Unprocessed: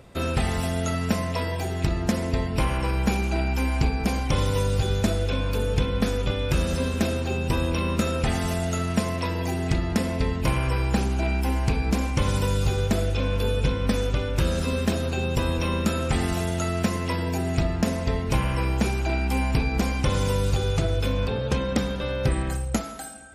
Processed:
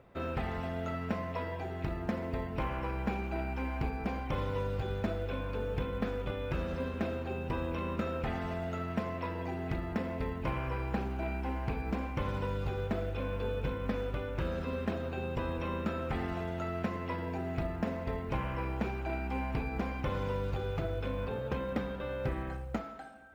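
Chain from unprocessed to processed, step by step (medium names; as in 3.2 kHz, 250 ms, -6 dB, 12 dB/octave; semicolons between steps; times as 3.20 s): low-pass 2 kHz 12 dB/octave; bass shelf 260 Hz -6.5 dB; companded quantiser 8-bit; trim -6.5 dB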